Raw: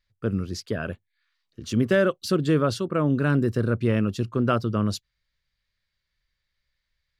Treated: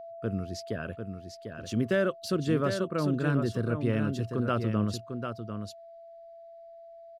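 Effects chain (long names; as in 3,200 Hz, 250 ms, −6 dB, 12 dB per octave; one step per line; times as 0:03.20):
steady tone 670 Hz −35 dBFS
single-tap delay 747 ms −7 dB
level −6 dB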